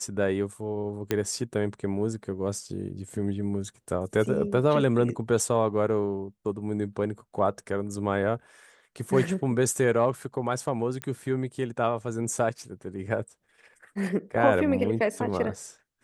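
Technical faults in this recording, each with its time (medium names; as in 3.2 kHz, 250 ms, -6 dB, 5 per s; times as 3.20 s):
1.11 s: pop -11 dBFS
11.02 s: pop -17 dBFS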